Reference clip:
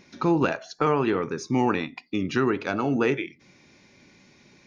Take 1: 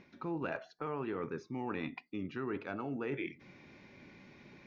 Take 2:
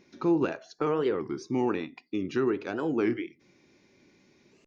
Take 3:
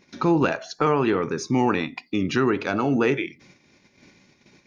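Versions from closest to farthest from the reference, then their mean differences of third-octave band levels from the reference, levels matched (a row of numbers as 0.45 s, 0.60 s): 3, 2, 1; 1.5 dB, 3.5 dB, 5.5 dB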